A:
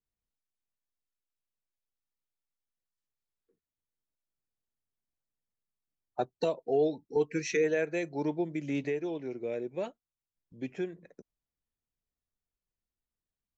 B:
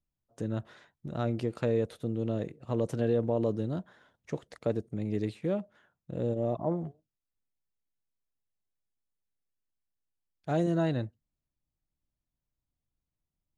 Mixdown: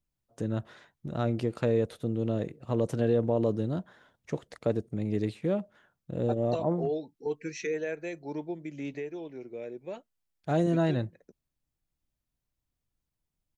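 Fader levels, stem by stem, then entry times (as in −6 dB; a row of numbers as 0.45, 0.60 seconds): −4.5, +2.0 decibels; 0.10, 0.00 seconds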